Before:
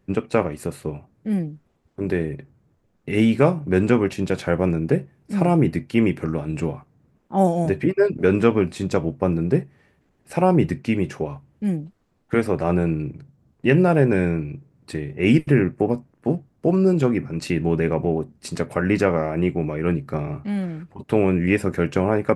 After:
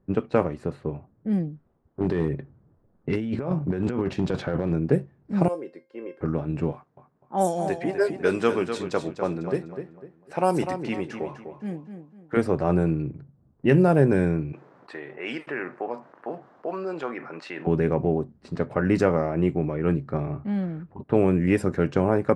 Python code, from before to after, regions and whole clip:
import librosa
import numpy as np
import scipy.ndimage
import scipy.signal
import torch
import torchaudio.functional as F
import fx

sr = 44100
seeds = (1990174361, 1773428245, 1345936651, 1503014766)

y = fx.chain(x, sr, fx.over_compress(threshold_db=-23.0, ratio=-1.0),
    fx.overload_stage(gain_db=15.0), at=(2.0, 4.73))
y = fx.chain(y, sr, fx.highpass_res(hz=420.0, q=2.5),
    fx.high_shelf(hz=3200.0, db=11.5),
    fx.comb_fb(f0_hz=530.0, decay_s=0.24, harmonics='all', damping=0.0, mix_pct=90), at=(5.48, 6.21))
y = fx.chain(y, sr, fx.riaa(side='recording'),
    fx.echo_feedback(ms=250, feedback_pct=34, wet_db=-8.5), at=(6.72, 12.37))
y = fx.chain(y, sr, fx.highpass(hz=850.0, slope=12),
    fx.env_flatten(amount_pct=50), at=(14.53, 17.67))
y = fx.env_lowpass(y, sr, base_hz=1400.0, full_db=-13.0)
y = fx.peak_eq(y, sr, hz=2400.0, db=-7.0, octaves=0.77)
y = y * 10.0 ** (-1.5 / 20.0)